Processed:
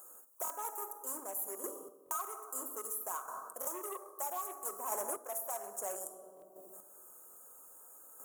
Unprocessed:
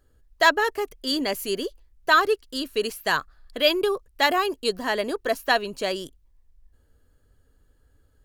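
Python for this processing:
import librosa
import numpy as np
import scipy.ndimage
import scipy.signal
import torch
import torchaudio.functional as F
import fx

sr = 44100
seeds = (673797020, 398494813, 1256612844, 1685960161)

y = np.clip(x, -10.0 ** (-23.5 / 20.0), 10.0 ** (-23.5 / 20.0))
y = scipy.signal.sosfilt(scipy.signal.cheby2(4, 40, [1800.0, 4800.0], 'bandstop', fs=sr, output='sos'), y)
y = fx.room_shoebox(y, sr, seeds[0], volume_m3=1000.0, walls='mixed', distance_m=0.95)
y = fx.cheby_harmonics(y, sr, harmonics=(7,), levels_db=(-35,), full_scale_db=-16.0)
y = scipy.signal.sosfilt(scipy.signal.butter(2, 1300.0, 'highpass', fs=sr, output='sos'), y)
y = fx.high_shelf(y, sr, hz=11000.0, db=11.5)
y = fx.rider(y, sr, range_db=5, speed_s=0.5)
y = fx.chopper(y, sr, hz=0.61, depth_pct=60, duty_pct=15)
y = fx.buffer_glitch(y, sr, at_s=(0.43, 2.04, 3.6, 6.35, 7.29), block=1024, repeats=2)
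y = fx.band_squash(y, sr, depth_pct=70)
y = F.gain(torch.from_numpy(y), 4.0).numpy()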